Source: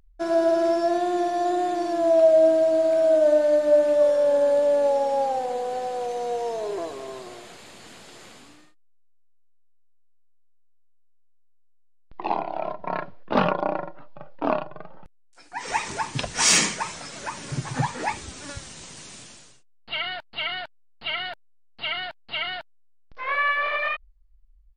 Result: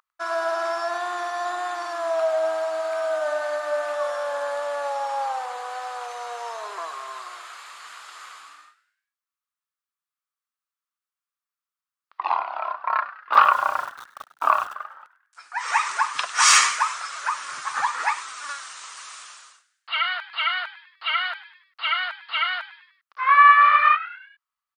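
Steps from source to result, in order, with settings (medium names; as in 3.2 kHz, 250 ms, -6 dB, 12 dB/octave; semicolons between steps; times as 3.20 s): resonant high-pass 1.2 kHz, resonance Q 5; 13.33–14.75 s: small samples zeroed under -38.5 dBFS; frequency-shifting echo 100 ms, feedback 46%, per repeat +110 Hz, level -16 dB; trim +1 dB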